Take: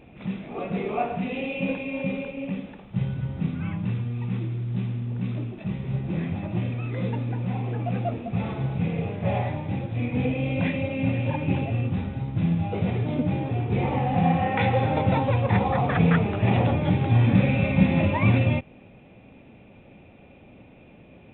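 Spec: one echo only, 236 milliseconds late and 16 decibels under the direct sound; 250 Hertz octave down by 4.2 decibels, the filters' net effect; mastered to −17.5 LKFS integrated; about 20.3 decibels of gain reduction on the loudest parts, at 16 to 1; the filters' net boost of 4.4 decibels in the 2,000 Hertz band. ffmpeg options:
ffmpeg -i in.wav -af "equalizer=frequency=250:width_type=o:gain=-6.5,equalizer=frequency=2000:width_type=o:gain=5.5,acompressor=threshold=-37dB:ratio=16,aecho=1:1:236:0.158,volume=24dB" out.wav

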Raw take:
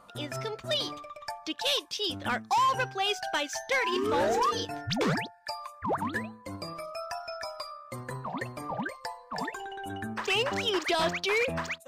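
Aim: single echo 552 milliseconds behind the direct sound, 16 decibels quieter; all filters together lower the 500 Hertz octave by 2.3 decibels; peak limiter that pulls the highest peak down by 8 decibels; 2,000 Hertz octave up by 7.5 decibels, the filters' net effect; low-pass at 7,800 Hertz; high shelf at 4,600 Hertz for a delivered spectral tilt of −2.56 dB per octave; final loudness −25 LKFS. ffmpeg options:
ffmpeg -i in.wav -af "lowpass=7800,equalizer=frequency=500:width_type=o:gain=-3.5,equalizer=frequency=2000:width_type=o:gain=8,highshelf=frequency=4600:gain=7.5,alimiter=limit=-20dB:level=0:latency=1,aecho=1:1:552:0.158,volume=5dB" out.wav

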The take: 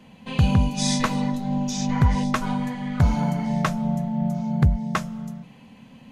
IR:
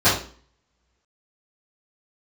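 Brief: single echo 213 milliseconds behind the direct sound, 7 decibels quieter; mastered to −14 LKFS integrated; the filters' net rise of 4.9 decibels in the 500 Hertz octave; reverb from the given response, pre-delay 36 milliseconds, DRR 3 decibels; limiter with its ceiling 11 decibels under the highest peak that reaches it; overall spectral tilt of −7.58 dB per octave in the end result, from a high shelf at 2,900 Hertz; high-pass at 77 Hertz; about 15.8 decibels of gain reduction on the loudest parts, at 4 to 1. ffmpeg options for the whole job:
-filter_complex "[0:a]highpass=77,equalizer=frequency=500:width_type=o:gain=6.5,highshelf=frequency=2900:gain=-6.5,acompressor=threshold=-33dB:ratio=4,alimiter=level_in=5.5dB:limit=-24dB:level=0:latency=1,volume=-5.5dB,aecho=1:1:213:0.447,asplit=2[link_01][link_02];[1:a]atrim=start_sample=2205,adelay=36[link_03];[link_02][link_03]afir=irnorm=-1:irlink=0,volume=-24dB[link_04];[link_01][link_04]amix=inputs=2:normalize=0,volume=20.5dB"

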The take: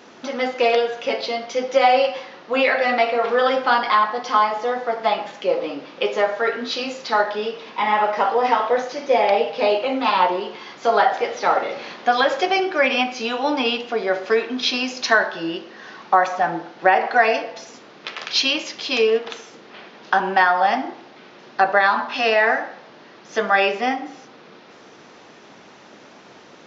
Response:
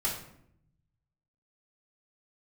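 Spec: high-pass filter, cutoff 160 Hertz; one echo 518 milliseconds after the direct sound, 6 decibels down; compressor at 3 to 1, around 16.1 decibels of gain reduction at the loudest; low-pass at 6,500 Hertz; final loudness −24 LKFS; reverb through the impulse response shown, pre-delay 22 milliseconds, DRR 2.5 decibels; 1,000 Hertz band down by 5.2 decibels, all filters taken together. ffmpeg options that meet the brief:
-filter_complex "[0:a]highpass=160,lowpass=6500,equalizer=frequency=1000:width_type=o:gain=-7.5,acompressor=threshold=-37dB:ratio=3,aecho=1:1:518:0.501,asplit=2[link_01][link_02];[1:a]atrim=start_sample=2205,adelay=22[link_03];[link_02][link_03]afir=irnorm=-1:irlink=0,volume=-8.5dB[link_04];[link_01][link_04]amix=inputs=2:normalize=0,volume=9.5dB"

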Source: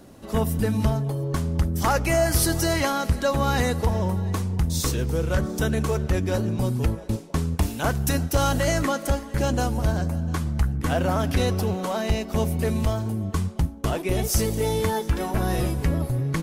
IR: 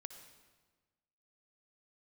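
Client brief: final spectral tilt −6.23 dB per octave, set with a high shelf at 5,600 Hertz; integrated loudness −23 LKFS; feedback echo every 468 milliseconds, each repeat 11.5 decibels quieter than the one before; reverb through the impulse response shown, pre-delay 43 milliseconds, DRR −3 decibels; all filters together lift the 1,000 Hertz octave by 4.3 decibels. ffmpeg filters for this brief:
-filter_complex "[0:a]equalizer=frequency=1000:width_type=o:gain=6,highshelf=frequency=5600:gain=-8,aecho=1:1:468|936|1404:0.266|0.0718|0.0194,asplit=2[link_01][link_02];[1:a]atrim=start_sample=2205,adelay=43[link_03];[link_02][link_03]afir=irnorm=-1:irlink=0,volume=8dB[link_04];[link_01][link_04]amix=inputs=2:normalize=0,volume=-4.5dB"

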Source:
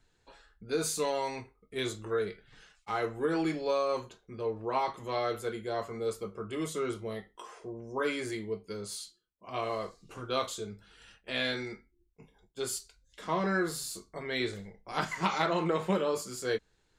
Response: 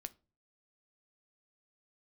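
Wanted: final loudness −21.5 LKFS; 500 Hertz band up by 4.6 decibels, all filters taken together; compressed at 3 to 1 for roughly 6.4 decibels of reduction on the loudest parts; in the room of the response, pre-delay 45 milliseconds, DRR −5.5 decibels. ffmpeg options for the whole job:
-filter_complex "[0:a]equalizer=frequency=500:width_type=o:gain=5.5,acompressor=threshold=-30dB:ratio=3,asplit=2[link_01][link_02];[1:a]atrim=start_sample=2205,adelay=45[link_03];[link_02][link_03]afir=irnorm=-1:irlink=0,volume=10dB[link_04];[link_01][link_04]amix=inputs=2:normalize=0,volume=7dB"

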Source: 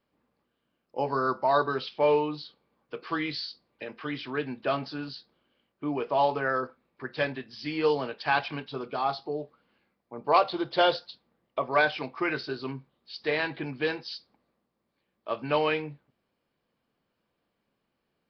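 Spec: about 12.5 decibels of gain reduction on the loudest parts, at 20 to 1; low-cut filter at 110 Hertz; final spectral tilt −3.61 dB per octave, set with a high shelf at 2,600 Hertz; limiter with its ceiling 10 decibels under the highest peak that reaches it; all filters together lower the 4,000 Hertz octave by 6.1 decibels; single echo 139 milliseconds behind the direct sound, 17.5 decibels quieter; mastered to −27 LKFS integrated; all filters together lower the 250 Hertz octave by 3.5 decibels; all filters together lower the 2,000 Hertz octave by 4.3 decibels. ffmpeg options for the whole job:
ffmpeg -i in.wav -af "highpass=110,equalizer=frequency=250:width_type=o:gain=-4.5,equalizer=frequency=2000:width_type=o:gain=-5.5,highshelf=frequency=2600:gain=3,equalizer=frequency=4000:width_type=o:gain=-8.5,acompressor=threshold=-31dB:ratio=20,alimiter=level_in=6dB:limit=-24dB:level=0:latency=1,volume=-6dB,aecho=1:1:139:0.133,volume=14.5dB" out.wav

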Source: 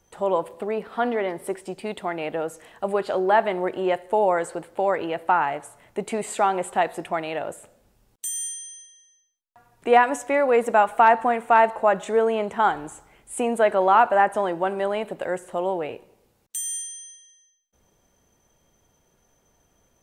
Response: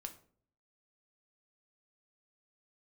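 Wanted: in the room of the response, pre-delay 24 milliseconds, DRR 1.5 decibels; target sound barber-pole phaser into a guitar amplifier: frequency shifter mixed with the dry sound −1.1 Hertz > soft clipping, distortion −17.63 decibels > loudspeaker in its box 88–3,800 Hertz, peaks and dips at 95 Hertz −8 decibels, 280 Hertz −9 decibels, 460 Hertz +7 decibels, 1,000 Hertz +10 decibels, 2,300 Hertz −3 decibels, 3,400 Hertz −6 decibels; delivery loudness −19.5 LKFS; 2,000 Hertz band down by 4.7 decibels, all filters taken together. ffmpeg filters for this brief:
-filter_complex "[0:a]equalizer=frequency=2000:width_type=o:gain=-6.5,asplit=2[link_01][link_02];[1:a]atrim=start_sample=2205,adelay=24[link_03];[link_02][link_03]afir=irnorm=-1:irlink=0,volume=2.5dB[link_04];[link_01][link_04]amix=inputs=2:normalize=0,asplit=2[link_05][link_06];[link_06]afreqshift=-1.1[link_07];[link_05][link_07]amix=inputs=2:normalize=1,asoftclip=threshold=-11dB,highpass=88,equalizer=frequency=95:width_type=q:width=4:gain=-8,equalizer=frequency=280:width_type=q:width=4:gain=-9,equalizer=frequency=460:width_type=q:width=4:gain=7,equalizer=frequency=1000:width_type=q:width=4:gain=10,equalizer=frequency=2300:width_type=q:width=4:gain=-3,equalizer=frequency=3400:width_type=q:width=4:gain=-6,lowpass=frequency=3800:width=0.5412,lowpass=frequency=3800:width=1.3066,volume=2.5dB"

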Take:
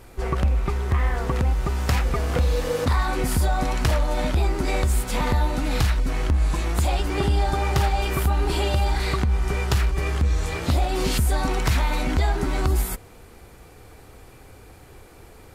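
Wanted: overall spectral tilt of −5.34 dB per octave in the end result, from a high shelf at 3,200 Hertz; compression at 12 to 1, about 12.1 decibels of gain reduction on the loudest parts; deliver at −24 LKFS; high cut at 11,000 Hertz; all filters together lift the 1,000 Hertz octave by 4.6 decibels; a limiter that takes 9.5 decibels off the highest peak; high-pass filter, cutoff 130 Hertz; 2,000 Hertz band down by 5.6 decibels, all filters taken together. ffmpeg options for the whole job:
ffmpeg -i in.wav -af "highpass=130,lowpass=11000,equalizer=frequency=1000:width_type=o:gain=8.5,equalizer=frequency=2000:width_type=o:gain=-9,highshelf=frequency=3200:gain=-5.5,acompressor=threshold=-32dB:ratio=12,volume=14dB,alimiter=limit=-14dB:level=0:latency=1" out.wav

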